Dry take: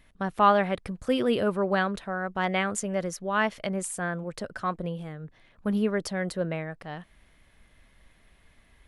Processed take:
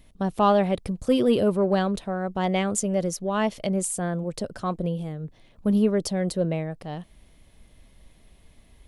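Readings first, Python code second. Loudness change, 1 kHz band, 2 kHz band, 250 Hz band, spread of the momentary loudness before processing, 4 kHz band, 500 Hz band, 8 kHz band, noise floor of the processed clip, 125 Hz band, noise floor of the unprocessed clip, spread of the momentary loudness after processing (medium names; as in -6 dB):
+3.0 dB, -0.5 dB, -5.5 dB, +5.5 dB, 14 LU, +1.5 dB, +4.0 dB, +5.5 dB, -56 dBFS, +6.0 dB, -61 dBFS, 11 LU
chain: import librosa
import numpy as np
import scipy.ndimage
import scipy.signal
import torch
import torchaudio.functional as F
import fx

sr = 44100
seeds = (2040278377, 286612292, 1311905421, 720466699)

p1 = fx.peak_eq(x, sr, hz=1600.0, db=-12.5, octaves=1.4)
p2 = 10.0 ** (-24.5 / 20.0) * np.tanh(p1 / 10.0 ** (-24.5 / 20.0))
p3 = p1 + (p2 * librosa.db_to_amplitude(-10.0))
y = p3 * librosa.db_to_amplitude(4.0)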